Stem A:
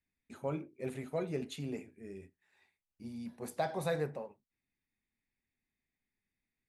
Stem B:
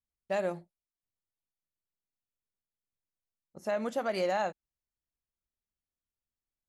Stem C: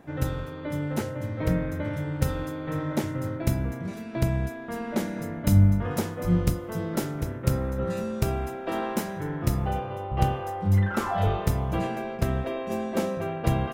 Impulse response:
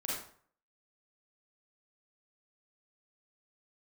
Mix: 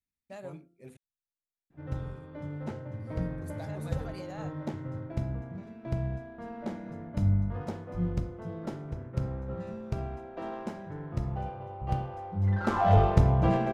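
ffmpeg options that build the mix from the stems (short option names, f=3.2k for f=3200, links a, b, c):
-filter_complex "[0:a]bandreject=f=172.1:t=h:w=4,bandreject=f=344.2:t=h:w=4,bandreject=f=516.3:t=h:w=4,bandreject=f=688.4:t=h:w=4,bandreject=f=860.5:t=h:w=4,bandreject=f=1.0326k:t=h:w=4,bandreject=f=1.2047k:t=h:w=4,bandreject=f=1.3768k:t=h:w=4,volume=-12dB,asplit=3[a][b][c];[a]atrim=end=0.97,asetpts=PTS-STARTPTS,afade=t=out:st=0.966:d=0.004:c=hsin[d];[b]atrim=start=0.97:end=1.98,asetpts=PTS-STARTPTS,volume=0[e];[c]atrim=start=1.98,asetpts=PTS-STARTPTS,afade=t=in:d=0.004:c=hsin[f];[d][e][f]concat=n=3:v=0:a=1[g];[1:a]volume=-14.5dB[h];[2:a]adynamicequalizer=threshold=0.00891:dfrequency=750:dqfactor=0.9:tfrequency=750:tqfactor=0.9:attack=5:release=100:ratio=0.375:range=3:mode=boostabove:tftype=bell,adynamicsmooth=sensitivity=2:basefreq=2.7k,adelay=1700,volume=-3.5dB,afade=t=in:st=12.42:d=0.43:silence=0.298538,asplit=2[i][j];[j]volume=-13.5dB[k];[3:a]atrim=start_sample=2205[l];[k][l]afir=irnorm=-1:irlink=0[m];[g][h][i][m]amix=inputs=4:normalize=0,bass=f=250:g=6,treble=f=4k:g=5"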